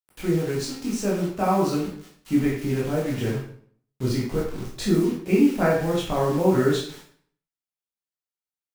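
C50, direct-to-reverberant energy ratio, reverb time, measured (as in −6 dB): 3.5 dB, −5.0 dB, 0.55 s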